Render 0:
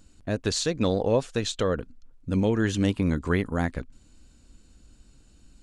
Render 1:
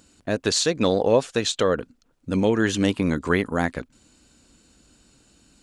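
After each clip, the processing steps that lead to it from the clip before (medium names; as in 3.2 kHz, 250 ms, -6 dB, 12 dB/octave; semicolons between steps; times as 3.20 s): high-pass 260 Hz 6 dB/octave; trim +6 dB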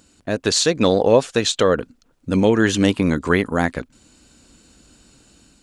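level rider gain up to 4 dB; trim +1.5 dB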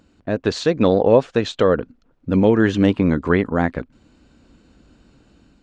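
tape spacing loss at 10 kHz 27 dB; trim +2 dB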